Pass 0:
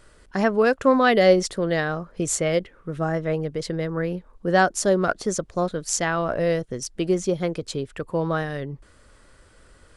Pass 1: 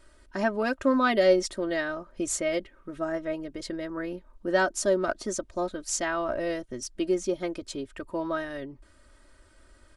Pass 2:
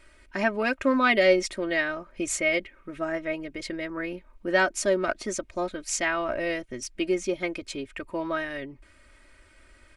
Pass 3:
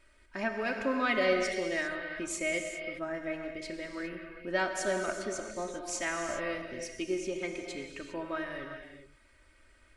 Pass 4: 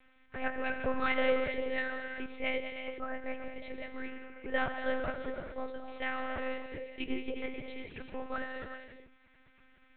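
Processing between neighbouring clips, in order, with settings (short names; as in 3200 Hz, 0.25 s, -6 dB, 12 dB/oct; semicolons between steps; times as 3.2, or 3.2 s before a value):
comb 3.2 ms, depth 79%; gain -7 dB
bell 2300 Hz +12.5 dB 0.63 oct
non-linear reverb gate 0.43 s flat, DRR 3 dB; gain -8 dB
monotone LPC vocoder at 8 kHz 260 Hz; gain -1 dB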